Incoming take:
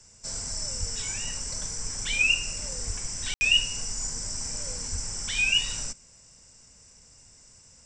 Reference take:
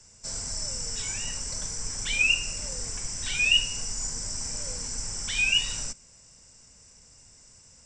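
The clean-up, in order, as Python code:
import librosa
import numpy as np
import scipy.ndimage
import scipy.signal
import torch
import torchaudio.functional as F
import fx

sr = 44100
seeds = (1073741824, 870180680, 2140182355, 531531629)

y = fx.fix_deplosive(x, sr, at_s=(0.79, 2.86, 4.91))
y = fx.fix_ambience(y, sr, seeds[0], print_start_s=6.04, print_end_s=6.54, start_s=3.34, end_s=3.41)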